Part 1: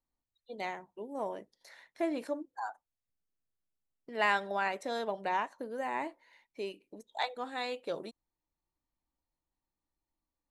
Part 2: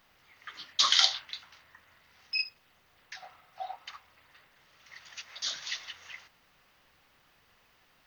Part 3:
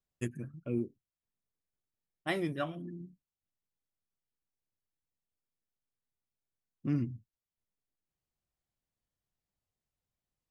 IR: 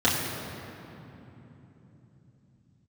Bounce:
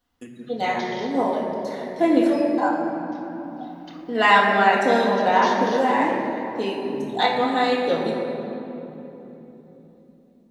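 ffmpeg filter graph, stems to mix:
-filter_complex "[0:a]volume=1.26,asplit=2[s0][s1];[s1]volume=0.631[s2];[1:a]alimiter=limit=0.188:level=0:latency=1:release=232,volume=0.422,afade=t=in:st=3.05:d=0.79:silence=0.281838,asplit=2[s3][s4];[s4]volume=0.282[s5];[2:a]highpass=f=160:w=0.5412,highpass=f=160:w=1.3066,acompressor=threshold=0.00631:ratio=6,volume=1.12,asplit=2[s6][s7];[s7]volume=0.2[s8];[3:a]atrim=start_sample=2205[s9];[s2][s5][s8]amix=inputs=3:normalize=0[s10];[s10][s9]afir=irnorm=-1:irlink=0[s11];[s0][s3][s6][s11]amix=inputs=4:normalize=0"

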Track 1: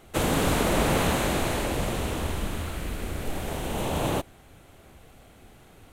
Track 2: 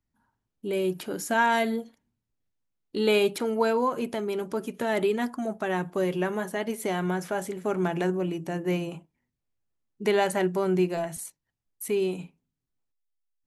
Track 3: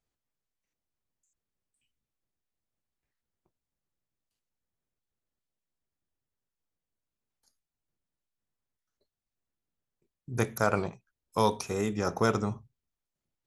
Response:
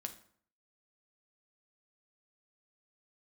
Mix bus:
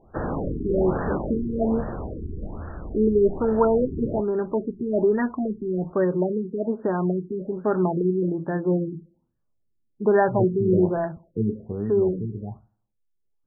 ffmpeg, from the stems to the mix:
-filter_complex "[0:a]volume=0.335,asplit=2[s0][s1];[s1]volume=0.188[s2];[1:a]bandreject=f=730:w=15,volume=0.75,asplit=2[s3][s4];[s4]volume=0.355[s5];[2:a]aphaser=in_gain=1:out_gain=1:delay=2.6:decay=0.67:speed=0.18:type=sinusoidal,volume=0.316,asplit=2[s6][s7];[s7]volume=0.316[s8];[3:a]atrim=start_sample=2205[s9];[s2][s5][s8]amix=inputs=3:normalize=0[s10];[s10][s9]afir=irnorm=-1:irlink=0[s11];[s0][s3][s6][s11]amix=inputs=4:normalize=0,acontrast=48,afftfilt=real='re*lt(b*sr/1024,420*pow(1900/420,0.5+0.5*sin(2*PI*1.2*pts/sr)))':imag='im*lt(b*sr/1024,420*pow(1900/420,0.5+0.5*sin(2*PI*1.2*pts/sr)))':win_size=1024:overlap=0.75"

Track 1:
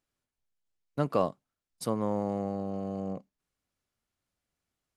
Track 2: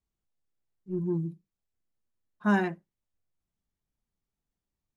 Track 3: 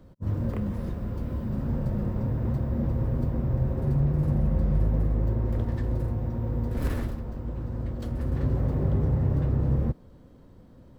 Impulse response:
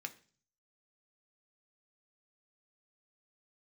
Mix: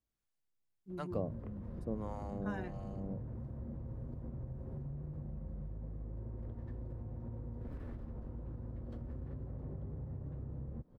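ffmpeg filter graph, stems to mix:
-filter_complex "[0:a]acrossover=split=630[s0][s1];[s0]aeval=exprs='val(0)*(1-1/2+1/2*cos(2*PI*1.6*n/s))':c=same[s2];[s1]aeval=exprs='val(0)*(1-1/2-1/2*cos(2*PI*1.6*n/s))':c=same[s3];[s2][s3]amix=inputs=2:normalize=0,volume=0.473[s4];[1:a]volume=0.562[s5];[2:a]lowpass=f=1100:p=1,acompressor=threshold=0.0224:ratio=6,adelay=900,volume=1.19[s6];[s5][s6]amix=inputs=2:normalize=0,acompressor=threshold=0.00398:ratio=2,volume=1[s7];[s4][s7]amix=inputs=2:normalize=0"

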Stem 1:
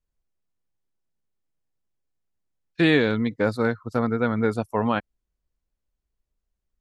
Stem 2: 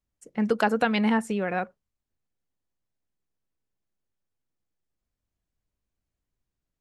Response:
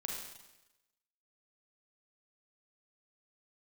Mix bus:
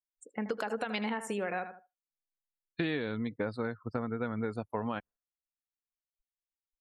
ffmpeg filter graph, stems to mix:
-filter_complex "[0:a]volume=0.75[s0];[1:a]bass=f=250:g=-9,treble=f=4000:g=3,dynaudnorm=f=120:g=11:m=1.68,alimiter=limit=0.251:level=0:latency=1:release=113,volume=0.708,asplit=2[s1][s2];[s2]volume=0.251,aecho=0:1:78|156|234|312:1|0.26|0.0676|0.0176[s3];[s0][s1][s3]amix=inputs=3:normalize=0,afftdn=nr=34:nf=-50,acompressor=threshold=0.0282:ratio=5"

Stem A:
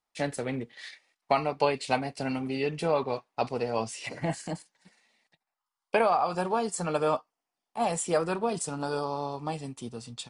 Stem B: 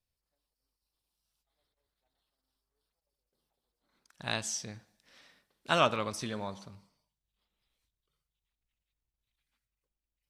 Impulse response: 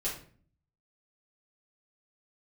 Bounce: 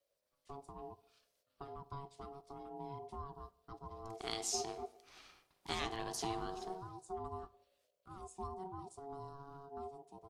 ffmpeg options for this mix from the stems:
-filter_complex "[0:a]firequalizer=gain_entry='entry(180,0);entry(250,-8);entry(460,-4);entry(1300,-28);entry(2000,-21);entry(5000,-15)':delay=0.05:min_phase=1,flanger=delay=0.3:depth=6.2:regen=46:speed=0.79:shape=sinusoidal,adelay=300,volume=0.596,asplit=2[s0][s1];[s1]volume=0.0891[s2];[1:a]acompressor=threshold=0.0112:ratio=1.5,volume=1.33,asplit=2[s3][s4];[s4]volume=0.211[s5];[2:a]atrim=start_sample=2205[s6];[s2][s5]amix=inputs=2:normalize=0[s7];[s7][s6]afir=irnorm=-1:irlink=0[s8];[s0][s3][s8]amix=inputs=3:normalize=0,acrossover=split=410|3000[s9][s10][s11];[s10]acompressor=threshold=0.00158:ratio=2[s12];[s9][s12][s11]amix=inputs=3:normalize=0,aeval=exprs='val(0)*sin(2*PI*560*n/s)':c=same"

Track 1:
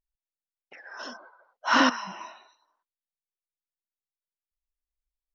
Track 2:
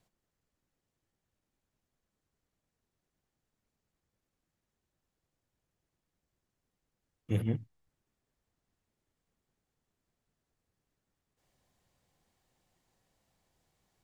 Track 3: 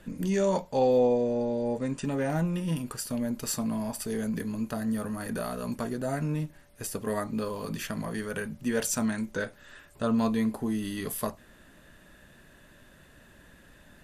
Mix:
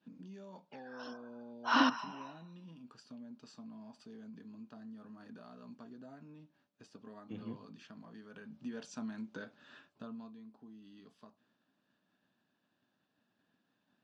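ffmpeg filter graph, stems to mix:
-filter_complex "[0:a]volume=1.12[s0];[1:a]alimiter=limit=0.075:level=0:latency=1:release=120,volume=0.422[s1];[2:a]agate=range=0.0224:threshold=0.00398:ratio=3:detection=peak,lowshelf=f=130:g=6.5,acompressor=threshold=0.0112:ratio=3,volume=0.708,afade=t=in:st=8.29:d=0.55:silence=0.398107,afade=t=out:st=9.68:d=0.69:silence=0.237137,asplit=2[s2][s3];[s3]apad=whole_len=235654[s4];[s0][s4]sidechaincompress=threshold=0.00224:ratio=8:attack=38:release=1020[s5];[s5][s1][s2]amix=inputs=3:normalize=0,highpass=f=150:w=0.5412,highpass=f=150:w=1.3066,equalizer=f=150:t=q:w=4:g=-7,equalizer=f=260:t=q:w=4:g=3,equalizer=f=380:t=q:w=4:g=-4,equalizer=f=540:t=q:w=4:g=-6,equalizer=f=2000:t=q:w=4:g=-10,lowpass=f=5000:w=0.5412,lowpass=f=5000:w=1.3066"

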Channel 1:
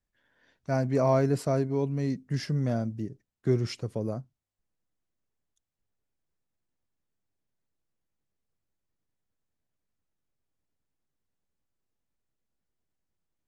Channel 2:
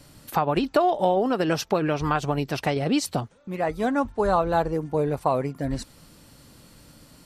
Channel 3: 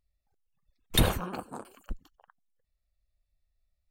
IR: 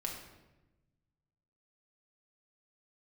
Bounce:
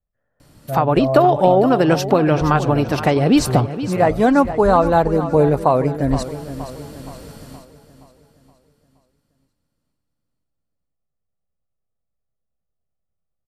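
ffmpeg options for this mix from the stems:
-filter_complex "[0:a]lowpass=1300,aecho=1:1:1.6:0.65,volume=1.12[s0];[1:a]highshelf=f=3700:g=6.5,dynaudnorm=f=210:g=3:m=3.76,adelay=400,volume=1.12,asplit=2[s1][s2];[s2]volume=0.237[s3];[2:a]adelay=2400,volume=0.501[s4];[s3]aecho=0:1:471|942|1413|1884|2355|2826|3297:1|0.48|0.23|0.111|0.0531|0.0255|0.0122[s5];[s0][s1][s4][s5]amix=inputs=4:normalize=0,highshelf=f=2200:g=-11"

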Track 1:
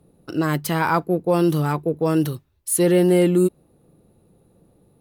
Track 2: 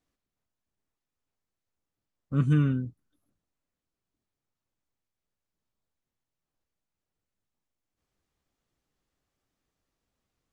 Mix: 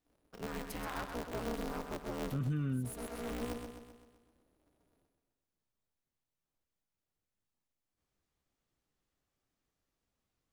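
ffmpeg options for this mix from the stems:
-filter_complex "[0:a]highpass=f=120:w=0.5412,highpass=f=120:w=1.3066,aeval=exprs='(tanh(7.08*val(0)+0.5)-tanh(0.5))/7.08':c=same,aeval=exprs='val(0)*sgn(sin(2*PI*120*n/s))':c=same,adelay=50,volume=0.141,asplit=2[s0][s1];[s1]volume=0.473[s2];[1:a]volume=0.668,asplit=2[s3][s4];[s4]apad=whole_len=222912[s5];[s0][s5]sidechaincompress=threshold=0.00891:ratio=8:attack=16:release=643[s6];[s2]aecho=0:1:129|258|387|516|645|774|903|1032:1|0.53|0.281|0.149|0.0789|0.0418|0.0222|0.0117[s7];[s6][s3][s7]amix=inputs=3:normalize=0,alimiter=level_in=1.5:limit=0.0631:level=0:latency=1:release=58,volume=0.668"

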